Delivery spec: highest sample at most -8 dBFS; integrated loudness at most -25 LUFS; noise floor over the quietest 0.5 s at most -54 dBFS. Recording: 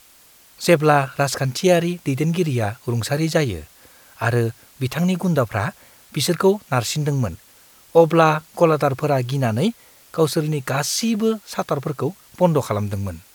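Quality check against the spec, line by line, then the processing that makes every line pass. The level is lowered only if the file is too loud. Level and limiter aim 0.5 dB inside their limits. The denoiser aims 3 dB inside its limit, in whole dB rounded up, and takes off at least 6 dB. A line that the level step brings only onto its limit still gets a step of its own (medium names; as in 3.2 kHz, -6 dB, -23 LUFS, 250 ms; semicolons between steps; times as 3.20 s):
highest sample -2.0 dBFS: fail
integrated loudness -20.5 LUFS: fail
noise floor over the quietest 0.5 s -51 dBFS: fail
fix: trim -5 dB; peak limiter -8.5 dBFS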